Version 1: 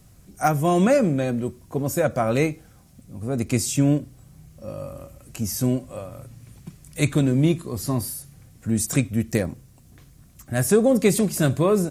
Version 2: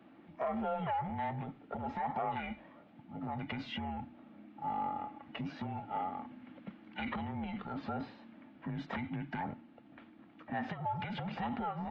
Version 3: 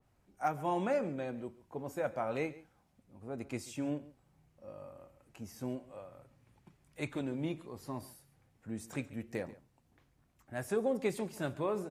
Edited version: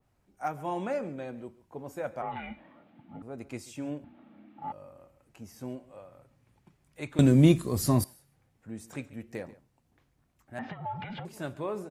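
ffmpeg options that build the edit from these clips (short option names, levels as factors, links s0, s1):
-filter_complex "[1:a]asplit=3[s0][s1][s2];[2:a]asplit=5[s3][s4][s5][s6][s7];[s3]atrim=end=2.222[s8];[s0]atrim=start=2.218:end=3.222[s9];[s4]atrim=start=3.218:end=4.042[s10];[s1]atrim=start=4.038:end=4.722[s11];[s5]atrim=start=4.718:end=7.192[s12];[0:a]atrim=start=7.188:end=8.042[s13];[s6]atrim=start=8.038:end=10.592[s14];[s2]atrim=start=10.588:end=11.252[s15];[s7]atrim=start=11.248[s16];[s8][s9]acrossfade=d=0.004:c1=hsin:c2=hsin[s17];[s17][s10]acrossfade=d=0.004:c1=hsin:c2=hsin[s18];[s18][s11]acrossfade=d=0.004:c1=hsin:c2=hsin[s19];[s19][s12]acrossfade=d=0.004:c1=hsin:c2=hsin[s20];[s20][s13]acrossfade=d=0.004:c1=hsin:c2=hsin[s21];[s21][s14]acrossfade=d=0.004:c1=hsin:c2=hsin[s22];[s22][s15]acrossfade=d=0.004:c1=hsin:c2=hsin[s23];[s23][s16]acrossfade=d=0.004:c1=hsin:c2=hsin"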